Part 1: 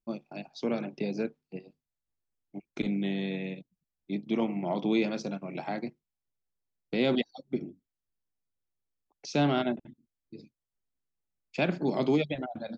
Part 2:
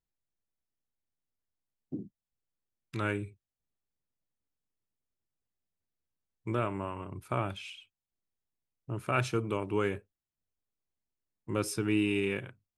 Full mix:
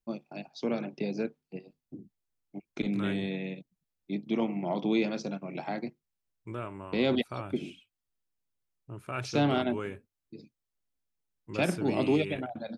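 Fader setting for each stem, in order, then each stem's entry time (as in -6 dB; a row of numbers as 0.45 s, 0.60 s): -0.5 dB, -6.5 dB; 0.00 s, 0.00 s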